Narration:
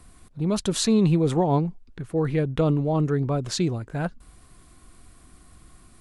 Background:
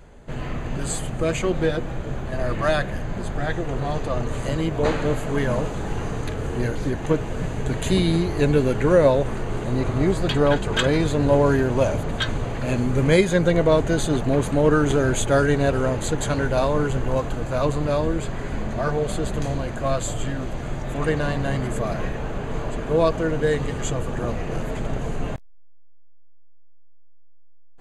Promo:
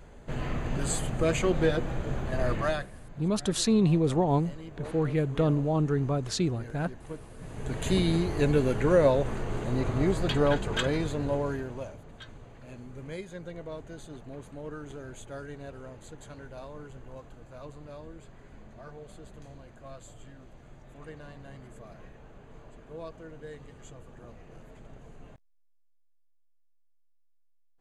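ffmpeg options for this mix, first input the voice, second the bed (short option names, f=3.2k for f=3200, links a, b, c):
-filter_complex "[0:a]adelay=2800,volume=-3.5dB[a];[1:a]volume=11dB,afade=t=out:st=2.49:d=0.41:silence=0.149624,afade=t=in:st=7.39:d=0.52:silence=0.199526,afade=t=out:st=10.43:d=1.53:silence=0.141254[b];[a][b]amix=inputs=2:normalize=0"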